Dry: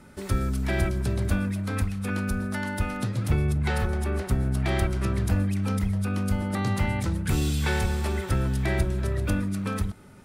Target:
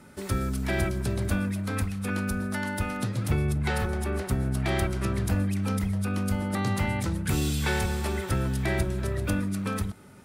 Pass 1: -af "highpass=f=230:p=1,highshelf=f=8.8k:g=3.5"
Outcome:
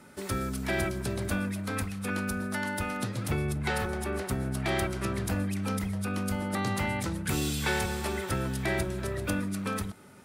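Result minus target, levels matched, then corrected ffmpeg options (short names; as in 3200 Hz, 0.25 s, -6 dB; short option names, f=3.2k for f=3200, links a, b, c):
125 Hz band -2.5 dB
-af "highpass=f=78:p=1,highshelf=f=8.8k:g=3.5"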